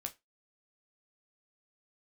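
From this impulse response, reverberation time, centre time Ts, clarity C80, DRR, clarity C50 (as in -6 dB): 0.20 s, 6 ms, 28.5 dB, 4.5 dB, 20.0 dB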